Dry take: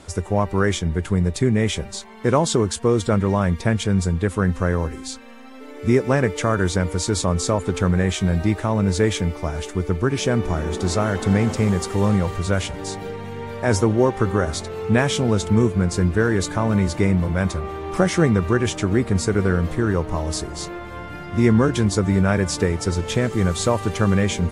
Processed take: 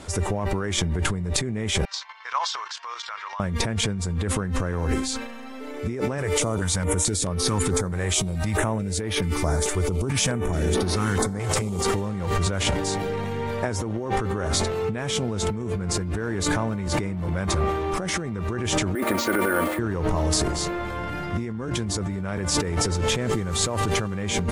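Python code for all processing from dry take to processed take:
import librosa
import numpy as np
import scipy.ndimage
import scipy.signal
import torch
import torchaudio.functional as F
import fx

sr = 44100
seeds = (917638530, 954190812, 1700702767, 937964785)

y = fx.chain(x, sr, fx.ellip_bandpass(low_hz=1000.0, high_hz=5500.0, order=3, stop_db=60),
    fx.level_steps(step_db=12), at=(1.85, 3.4))
y = fx.chain(y, sr, fx.peak_eq(hz=9600.0, db=9.0, octaves=1.0),
    fx.filter_held_notch(hz=4.6, low_hz=230.0, high_hz=7500.0), at=(6.18, 11.81))
y = fx.chain(y, sr, fx.bandpass_edges(low_hz=380.0, high_hz=3800.0),
    fx.comb(ms=3.4, depth=0.78),
    fx.resample_bad(factor=4, down='none', up='hold'), at=(18.95, 19.79))
y = fx.transient(y, sr, attack_db=-2, sustain_db=8)
y = fx.over_compress(y, sr, threshold_db=-24.0, ratio=-1.0)
y = F.gain(torch.from_numpy(y), -1.0).numpy()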